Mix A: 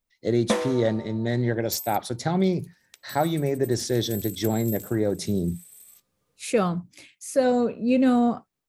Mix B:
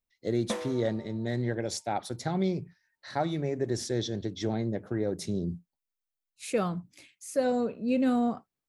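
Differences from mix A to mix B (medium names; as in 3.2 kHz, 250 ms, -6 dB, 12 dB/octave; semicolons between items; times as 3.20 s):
speech -6.0 dB; first sound -9.5 dB; second sound: muted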